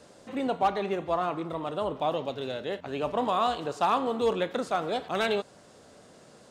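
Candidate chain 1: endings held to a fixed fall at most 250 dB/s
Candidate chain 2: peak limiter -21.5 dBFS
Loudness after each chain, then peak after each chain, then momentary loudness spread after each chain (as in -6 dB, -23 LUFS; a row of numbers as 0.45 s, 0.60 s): -30.0 LUFS, -32.5 LUFS; -16.5 dBFS, -21.5 dBFS; 8 LU, 4 LU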